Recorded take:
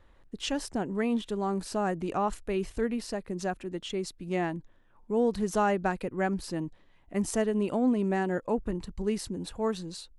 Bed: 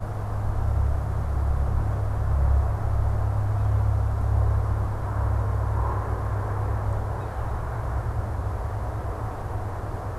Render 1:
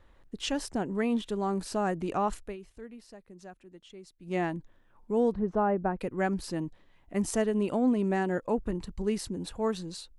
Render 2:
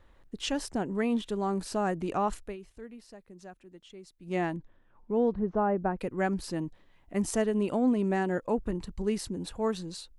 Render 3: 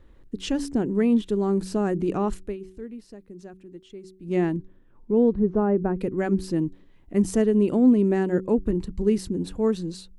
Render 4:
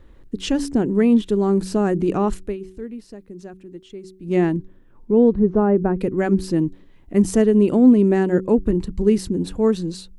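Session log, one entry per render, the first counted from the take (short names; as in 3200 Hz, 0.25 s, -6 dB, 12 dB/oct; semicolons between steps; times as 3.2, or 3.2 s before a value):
2.39–4.37 dip -15.5 dB, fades 0.18 s; 5.33–6.01 LPF 1100 Hz
4.56–5.75 air absorption 170 m
resonant low shelf 510 Hz +7.5 dB, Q 1.5; de-hum 93.95 Hz, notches 4
gain +5 dB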